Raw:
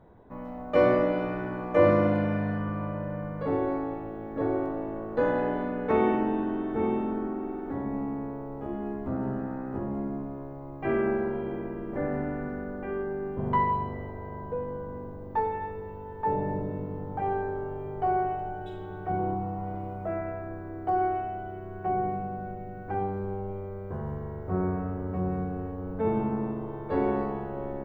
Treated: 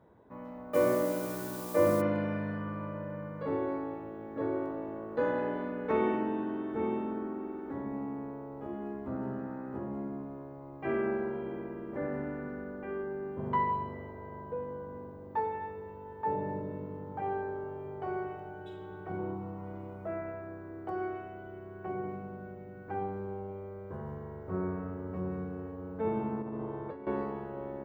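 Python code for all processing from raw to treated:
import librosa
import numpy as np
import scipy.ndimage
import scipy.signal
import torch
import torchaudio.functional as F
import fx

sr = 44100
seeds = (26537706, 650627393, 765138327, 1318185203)

y = fx.lowpass(x, sr, hz=1500.0, slope=6, at=(0.73, 2.0), fade=0.02)
y = fx.dmg_noise_colour(y, sr, seeds[0], colour='blue', level_db=-42.0, at=(0.73, 2.0), fade=0.02)
y = fx.chain(y, sr, fx.lowpass(hz=2800.0, slope=6),
    fx.over_compress(threshold_db=-34.0, ratio=-1.0), at=(26.42, 27.07))
y = scipy.signal.sosfilt(scipy.signal.butter(2, 51.0, 'highpass', fs=sr, output='sos'), y)
y = fx.low_shelf(y, sr, hz=140.0, db=-6.0)
y = fx.notch(y, sr, hz=730.0, q=12.0)
y = F.gain(torch.from_numpy(y), -4.0).numpy()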